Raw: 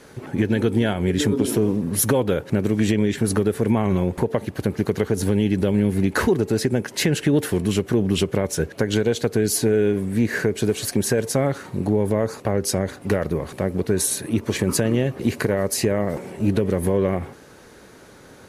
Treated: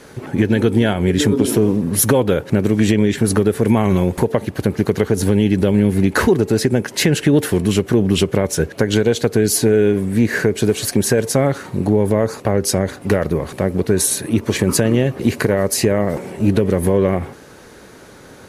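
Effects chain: 3.65–4.32 high shelf 4100 Hz +6.5 dB; gain +5 dB

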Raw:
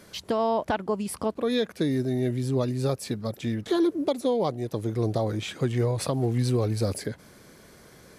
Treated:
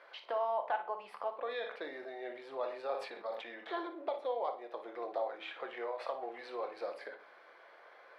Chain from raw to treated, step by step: HPF 630 Hz 24 dB/oct; high shelf 4400 Hz -8.5 dB; compressor 1.5:1, threshold -44 dBFS, peak gain reduction 7.5 dB; air absorption 400 m; flutter echo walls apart 10 m, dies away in 0.3 s; reverb RT60 0.45 s, pre-delay 6 ms, DRR 7.5 dB; 1.33–3.88 sustainer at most 81 dB/s; gain +2 dB

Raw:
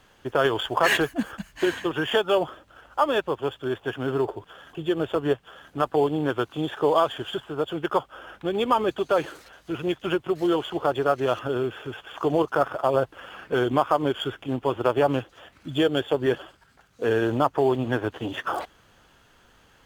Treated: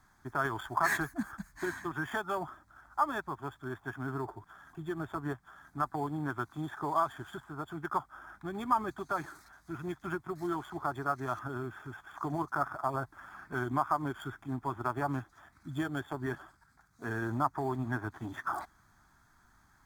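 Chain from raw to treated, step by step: fixed phaser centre 1200 Hz, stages 4; gain -5 dB

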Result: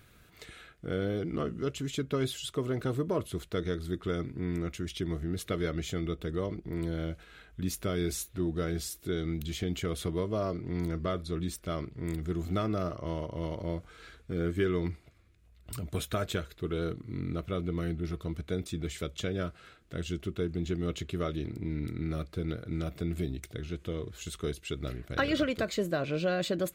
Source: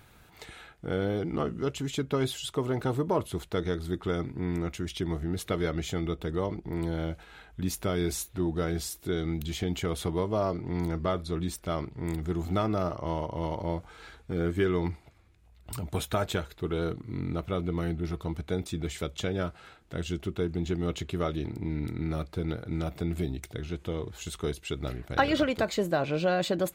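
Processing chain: bell 850 Hz -14.5 dB 0.33 oct; gain -2 dB

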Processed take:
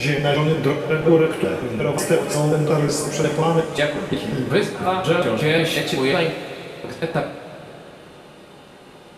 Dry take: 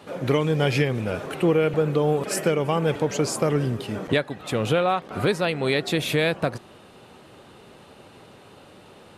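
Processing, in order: slices in reverse order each 0.18 s, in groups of 5; two-slope reverb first 0.42 s, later 4 s, from -17 dB, DRR -2 dB

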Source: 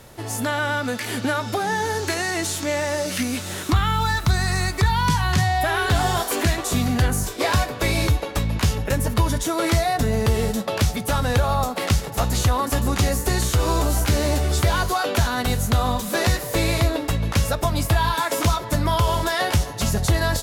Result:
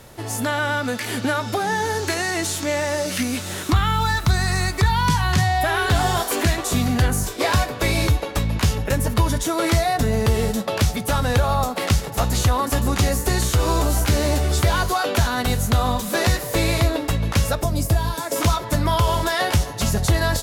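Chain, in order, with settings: 17.63–18.36 band shelf 1800 Hz -8.5 dB 2.6 oct; gain +1 dB

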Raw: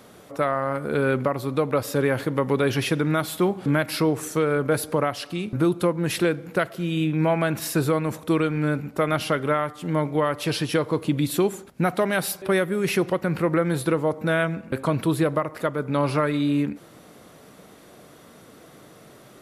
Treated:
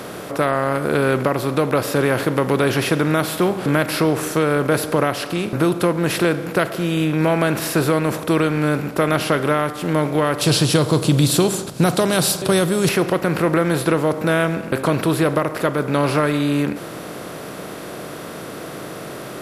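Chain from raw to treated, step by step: per-bin compression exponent 0.6; 10.41–12.89 graphic EQ 125/2000/4000/8000 Hz +9/-6/+7/+9 dB; gain +1 dB

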